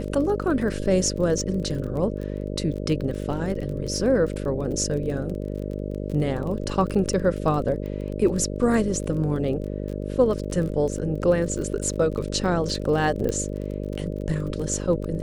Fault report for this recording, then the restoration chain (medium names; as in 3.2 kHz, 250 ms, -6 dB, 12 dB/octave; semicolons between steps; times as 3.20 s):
buzz 50 Hz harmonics 12 -30 dBFS
crackle 29 per s -31 dBFS
13.29 s: pop -15 dBFS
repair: de-click; de-hum 50 Hz, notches 12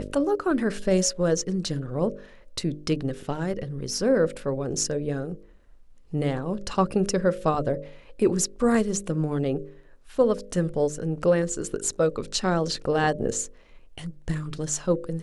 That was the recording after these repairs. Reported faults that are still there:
nothing left